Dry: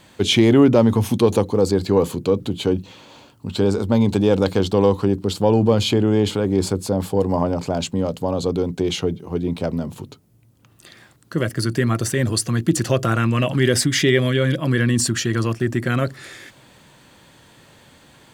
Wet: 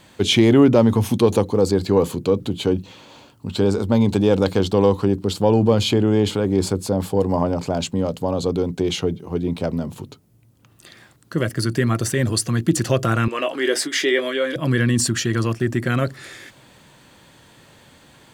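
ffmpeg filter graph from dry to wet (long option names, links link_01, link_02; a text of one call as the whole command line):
ffmpeg -i in.wav -filter_complex "[0:a]asettb=1/sr,asplit=3[link_01][link_02][link_03];[link_01]atrim=end=13.284[link_04];[link_02]atrim=start=13.28:end=14.56,asetpts=PTS-STARTPTS,afade=type=in:duration=0.004:curve=qsin,afade=type=out:start_time=1.276:duration=0.004:curve=qsin,highpass=frequency=330:width=0.5412,highpass=frequency=330:width=1.3066,highshelf=frequency=4600:gain=-5.5,asplit=2[link_05][link_06];[link_06]adelay=19,volume=-8dB[link_07];[link_05][link_07]amix=inputs=2:normalize=0,atrim=end_sample=56448[link_08];[link_03]atrim=start=14.556[link_09];[link_04][link_08]acrossfade=duration=0.004:curve1=hsin:curve2=qsin[link_10];[link_10][link_09]acrossfade=duration=0.004:curve1=qsin:curve2=hsin" out.wav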